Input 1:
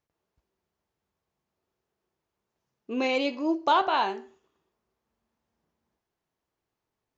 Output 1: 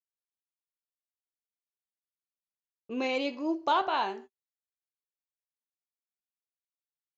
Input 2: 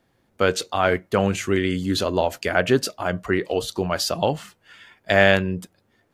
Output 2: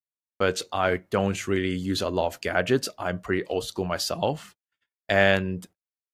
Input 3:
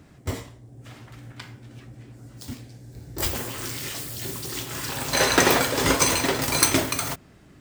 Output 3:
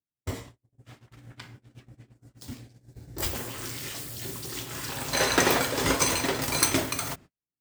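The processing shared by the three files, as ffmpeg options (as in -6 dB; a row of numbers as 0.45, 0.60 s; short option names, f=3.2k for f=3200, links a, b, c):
-af "agate=range=-47dB:threshold=-42dB:ratio=16:detection=peak,volume=-4dB"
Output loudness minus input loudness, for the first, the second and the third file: -4.0, -4.0, -4.0 LU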